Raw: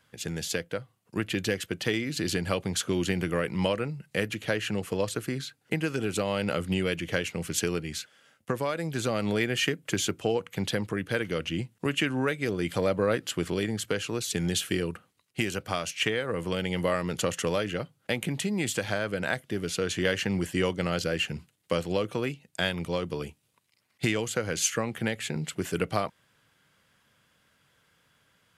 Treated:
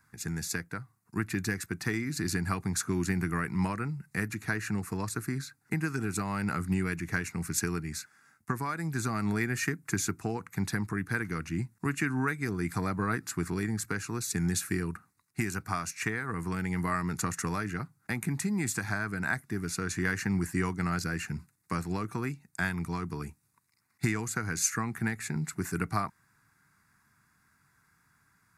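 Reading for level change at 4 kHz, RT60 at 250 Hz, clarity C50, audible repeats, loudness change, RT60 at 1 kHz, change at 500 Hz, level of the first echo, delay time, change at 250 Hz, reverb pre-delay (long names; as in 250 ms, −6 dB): −11.0 dB, no reverb audible, no reverb audible, no echo audible, −3.0 dB, no reverb audible, −10.5 dB, no echo audible, no echo audible, −1.0 dB, no reverb audible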